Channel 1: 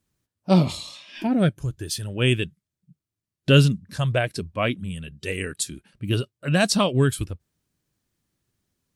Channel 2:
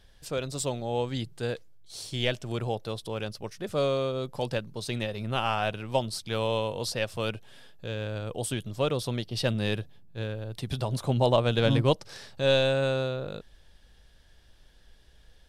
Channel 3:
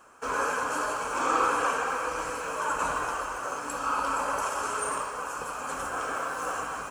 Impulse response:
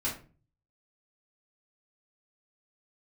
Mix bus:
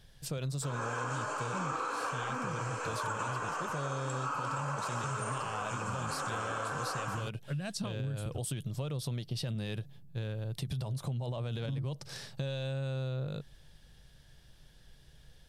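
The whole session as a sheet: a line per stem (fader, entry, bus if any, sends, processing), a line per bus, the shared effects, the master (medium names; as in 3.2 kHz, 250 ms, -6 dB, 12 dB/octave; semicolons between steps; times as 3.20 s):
-9.0 dB, 1.05 s, bus A, no send, compression 4:1, threshold -23 dBFS, peak gain reduction 11 dB
-2.0 dB, 0.00 s, bus A, no send, treble shelf 5.5 kHz +5.5 dB
-8.5 dB, 0.40 s, no bus, no send, Chebyshev band-pass 230–7800 Hz, order 3; level rider gain up to 12.5 dB
bus A: 0.0 dB, peaking EQ 140 Hz +13.5 dB 0.59 oct; peak limiter -22.5 dBFS, peak gain reduction 15 dB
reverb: none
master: compression, threshold -33 dBFS, peak gain reduction 14 dB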